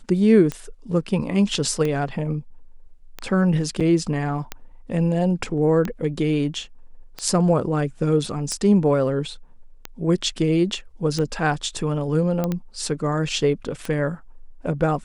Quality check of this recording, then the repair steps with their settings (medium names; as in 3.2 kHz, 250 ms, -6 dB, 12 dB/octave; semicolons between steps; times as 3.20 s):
tick 45 rpm -13 dBFS
3.80–3.81 s: dropout 6.3 ms
12.44 s: pop -11 dBFS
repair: de-click; interpolate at 3.80 s, 6.3 ms